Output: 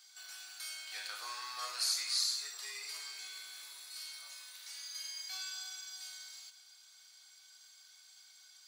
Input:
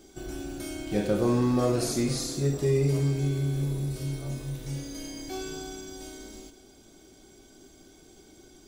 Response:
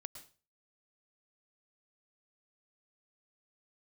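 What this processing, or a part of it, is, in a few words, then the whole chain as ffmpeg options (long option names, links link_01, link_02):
headphones lying on a table: -af "highpass=frequency=1200:width=0.5412,highpass=frequency=1200:width=1.3066,equalizer=frequency=4400:width_type=o:width=0.28:gain=11,bandreject=frequency=540:width=12,volume=-2.5dB"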